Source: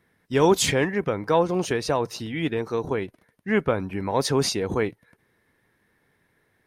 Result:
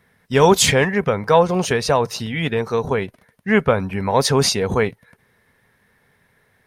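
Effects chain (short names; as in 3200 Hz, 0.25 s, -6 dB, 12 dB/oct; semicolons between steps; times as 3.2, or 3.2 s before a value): bell 320 Hz -15 dB 0.27 oct; gain +7.5 dB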